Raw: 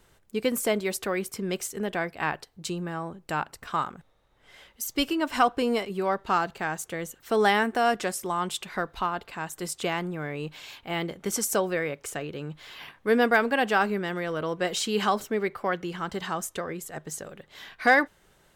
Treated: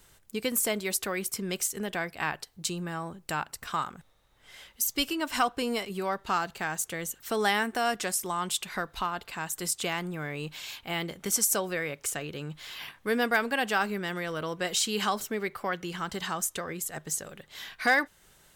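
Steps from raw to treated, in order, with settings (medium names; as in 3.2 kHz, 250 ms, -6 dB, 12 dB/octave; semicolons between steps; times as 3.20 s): treble shelf 4.2 kHz +8.5 dB; in parallel at -1.5 dB: compression, threshold -30 dBFS, peak gain reduction 15 dB; on the sum: peaking EQ 430 Hz -3.5 dB 2 oct; trim -5 dB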